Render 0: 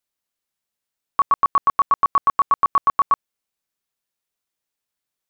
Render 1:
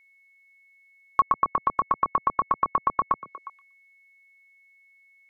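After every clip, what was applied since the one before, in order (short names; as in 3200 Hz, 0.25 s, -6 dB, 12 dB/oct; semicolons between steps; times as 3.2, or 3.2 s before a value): treble ducked by the level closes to 540 Hz, closed at -13.5 dBFS; whine 2200 Hz -57 dBFS; delay with a stepping band-pass 0.119 s, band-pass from 170 Hz, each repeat 1.4 oct, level -9.5 dB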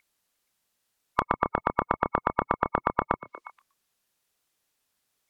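spectral gate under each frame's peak -10 dB weak; gain +7.5 dB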